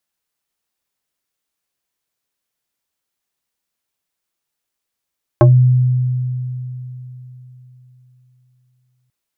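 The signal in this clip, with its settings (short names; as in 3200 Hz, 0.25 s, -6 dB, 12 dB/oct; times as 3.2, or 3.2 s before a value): FM tone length 3.69 s, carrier 126 Hz, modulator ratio 3.77, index 1.8, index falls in 0.17 s exponential, decay 3.76 s, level -4 dB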